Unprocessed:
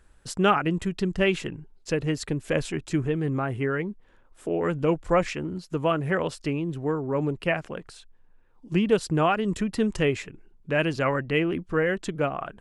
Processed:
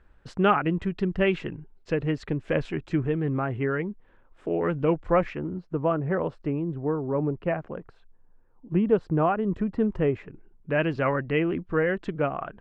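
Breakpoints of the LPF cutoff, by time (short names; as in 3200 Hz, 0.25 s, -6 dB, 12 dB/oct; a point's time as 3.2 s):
5.06 s 2500 Hz
5.59 s 1200 Hz
10.11 s 1200 Hz
10.82 s 2300 Hz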